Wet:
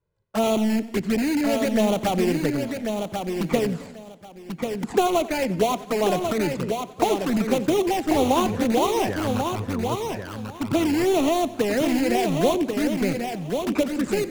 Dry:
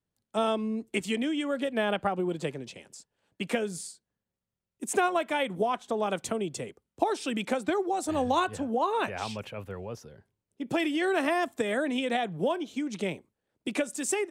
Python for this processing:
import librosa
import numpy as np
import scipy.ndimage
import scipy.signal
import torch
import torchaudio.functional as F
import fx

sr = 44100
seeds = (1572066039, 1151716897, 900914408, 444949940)

p1 = scipy.signal.medfilt(x, 15)
p2 = scipy.signal.sosfilt(scipy.signal.butter(2, 9700.0, 'lowpass', fs=sr, output='sos'), p1)
p3 = fx.high_shelf(p2, sr, hz=3800.0, db=-8.0)
p4 = (np.mod(10.0 ** (28.0 / 20.0) * p3 + 1.0, 2.0) - 1.0) / 10.0 ** (28.0 / 20.0)
p5 = p3 + (p4 * 10.0 ** (-4.5 / 20.0))
p6 = fx.env_flanger(p5, sr, rest_ms=2.0, full_db=-24.0)
p7 = p6 + fx.echo_feedback(p6, sr, ms=1090, feedback_pct=18, wet_db=-5.5, dry=0)
p8 = fx.echo_warbled(p7, sr, ms=90, feedback_pct=60, rate_hz=2.8, cents=63, wet_db=-18.0)
y = p8 * 10.0 ** (8.0 / 20.0)